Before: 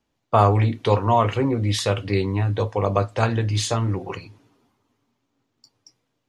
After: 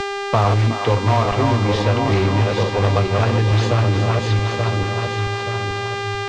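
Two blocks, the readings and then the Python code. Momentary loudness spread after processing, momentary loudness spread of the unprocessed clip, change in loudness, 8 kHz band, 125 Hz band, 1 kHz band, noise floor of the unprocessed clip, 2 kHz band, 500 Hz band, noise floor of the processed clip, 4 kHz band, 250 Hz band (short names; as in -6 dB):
6 LU, 6 LU, +3.0 dB, -1.0 dB, +6.0 dB, +3.0 dB, -75 dBFS, +10.0 dB, +3.5 dB, -25 dBFS, +5.5 dB, +4.0 dB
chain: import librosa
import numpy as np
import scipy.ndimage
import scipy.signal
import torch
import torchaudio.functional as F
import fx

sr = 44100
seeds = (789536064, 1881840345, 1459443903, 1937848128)

p1 = fx.reverse_delay_fb(x, sr, ms=439, feedback_pct=57, wet_db=-4.5)
p2 = fx.low_shelf(p1, sr, hz=72.0, db=6.5)
p3 = (np.mod(10.0 ** (12.5 / 20.0) * p2 + 1.0, 2.0) - 1.0) / 10.0 ** (12.5 / 20.0)
p4 = p2 + (p3 * librosa.db_to_amplitude(-10.0))
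p5 = fx.dmg_buzz(p4, sr, base_hz=400.0, harmonics=23, level_db=-30.0, tilt_db=-3, odd_only=False)
p6 = fx.air_absorb(p5, sr, metres=150.0)
p7 = p6 + fx.echo_thinned(p6, sr, ms=365, feedback_pct=76, hz=630.0, wet_db=-11.0, dry=0)
y = fx.band_squash(p7, sr, depth_pct=70)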